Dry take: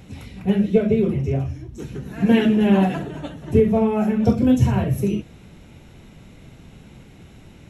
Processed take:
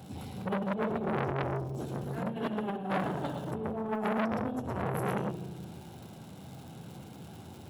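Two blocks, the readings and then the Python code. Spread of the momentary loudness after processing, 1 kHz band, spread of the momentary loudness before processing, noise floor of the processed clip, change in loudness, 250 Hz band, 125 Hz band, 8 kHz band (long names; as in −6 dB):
16 LU, −4.0 dB, 16 LU, −48 dBFS, −14.5 dB, −16.0 dB, −13.5 dB, can't be measured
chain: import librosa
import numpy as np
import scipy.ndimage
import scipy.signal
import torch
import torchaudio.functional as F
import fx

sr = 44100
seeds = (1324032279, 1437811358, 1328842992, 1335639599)

y = fx.graphic_eq_31(x, sr, hz=(800, 1600, 2500, 6300, 10000), db=(8, 4, -6, -8, 3))
y = fx.dmg_crackle(y, sr, seeds[0], per_s=200.0, level_db=-40.0)
y = scipy.signal.sosfilt(scipy.signal.butter(4, 87.0, 'highpass', fs=sr, output='sos'), y)
y = fx.peak_eq(y, sr, hz=1900.0, db=-11.0, octaves=0.47)
y = fx.hum_notches(y, sr, base_hz=50, count=9)
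y = y + 10.0 ** (-5.5 / 20.0) * np.pad(y, (int(114 * sr / 1000.0), 0))[:len(y)]
y = fx.over_compress(y, sr, threshold_db=-21.0, ratio=-0.5)
y = fx.rev_spring(y, sr, rt60_s=1.9, pass_ms=(36, 45), chirp_ms=50, drr_db=10.0)
y = fx.transformer_sat(y, sr, knee_hz=1300.0)
y = F.gain(torch.from_numpy(y), -6.0).numpy()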